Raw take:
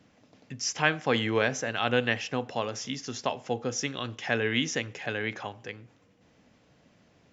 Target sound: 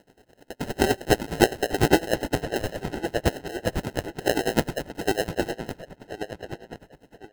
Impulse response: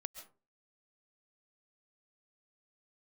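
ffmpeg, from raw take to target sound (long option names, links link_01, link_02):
-filter_complex "[0:a]equalizer=frequency=1500:width_type=o:width=0.37:gain=10.5,asplit=2[link_01][link_02];[link_02]acompressor=threshold=-36dB:ratio=6,volume=-2dB[link_03];[link_01][link_03]amix=inputs=2:normalize=0,highpass=frequency=740:width_type=q:width=1.8,acrusher=samples=38:mix=1:aa=0.000001,asplit=2[link_04][link_05];[link_05]adelay=1066,lowpass=frequency=3800:poles=1,volume=-9dB,asplit=2[link_06][link_07];[link_07]adelay=1066,lowpass=frequency=3800:poles=1,volume=0.32,asplit=2[link_08][link_09];[link_09]adelay=1066,lowpass=frequency=3800:poles=1,volume=0.32,asplit=2[link_10][link_11];[link_11]adelay=1066,lowpass=frequency=3800:poles=1,volume=0.32[link_12];[link_04][link_06][link_08][link_10][link_12]amix=inputs=5:normalize=0,aeval=exprs='val(0)*pow(10,-20*(0.5-0.5*cos(2*PI*9.8*n/s))/20)':channel_layout=same,volume=5.5dB"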